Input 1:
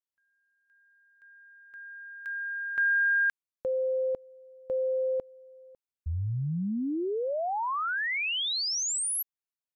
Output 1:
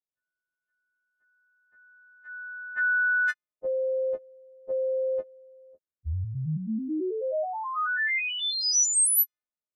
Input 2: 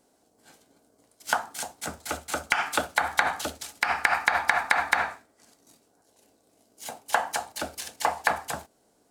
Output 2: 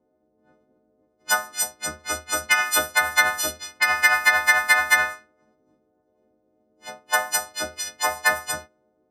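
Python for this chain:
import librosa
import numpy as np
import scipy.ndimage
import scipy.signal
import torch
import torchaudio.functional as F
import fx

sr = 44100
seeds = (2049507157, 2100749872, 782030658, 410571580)

y = fx.freq_snap(x, sr, grid_st=3)
y = fx.env_lowpass(y, sr, base_hz=570.0, full_db=-19.5)
y = fx.doubler(y, sr, ms=13.0, db=-8.0)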